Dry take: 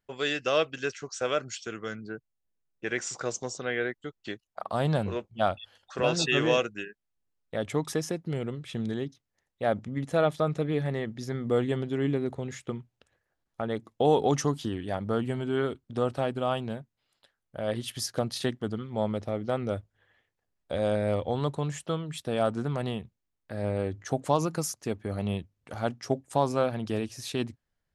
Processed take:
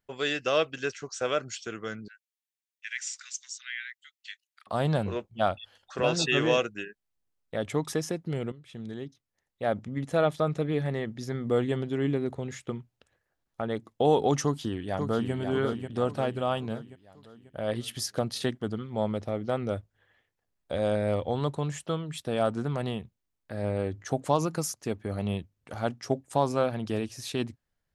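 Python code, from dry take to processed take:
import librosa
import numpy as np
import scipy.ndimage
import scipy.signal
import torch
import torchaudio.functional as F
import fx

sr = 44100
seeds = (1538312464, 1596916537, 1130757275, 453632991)

y = fx.steep_highpass(x, sr, hz=1800.0, slope=36, at=(2.08, 4.67))
y = fx.echo_throw(y, sr, start_s=14.43, length_s=0.9, ms=540, feedback_pct=50, wet_db=-6.0)
y = fx.edit(y, sr, fx.fade_in_from(start_s=8.52, length_s=1.88, curve='qsin', floor_db=-13.0), tone=tone)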